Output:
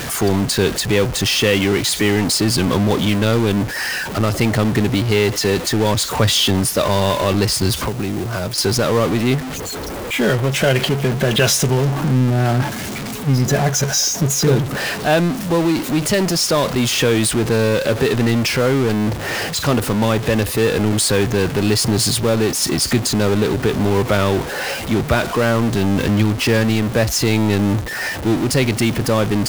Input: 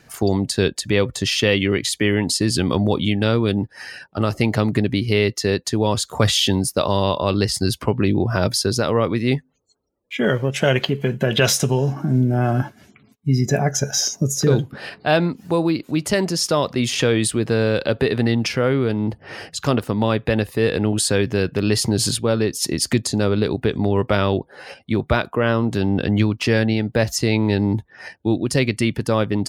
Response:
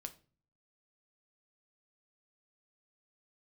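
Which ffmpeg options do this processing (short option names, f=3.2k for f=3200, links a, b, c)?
-filter_complex "[0:a]aeval=exprs='val(0)+0.5*0.126*sgn(val(0))':c=same,asettb=1/sr,asplit=3[a][b][c];[a]atrim=end=7.874[d];[b]atrim=start=7.87:end=8.58,asetpts=PTS-STARTPTS,afade=t=in:d=0.004:c=qsin,afade=t=out:st=0.706:d=0.004:c=qsin,acrossover=split=180|5600[e][f][g];[e]acompressor=threshold=-26dB:ratio=4[h];[f]acompressor=threshold=-22dB:ratio=4[i];[g]acompressor=threshold=-35dB:ratio=4[j];[h][i][j]amix=inputs=3:normalize=0[k];[c]atrim=start=8.576[l];[d][k]acrossfade=d=0.004:c1=hsin:c2=qsin[m];[m][l]acrossfade=d=0.004:c1=qsin:c2=hsin,asplit=2[n][o];[o]acrusher=bits=3:mix=0:aa=0.000001,volume=-12dB[p];[n][p]amix=inputs=2:normalize=0,volume=-2.5dB"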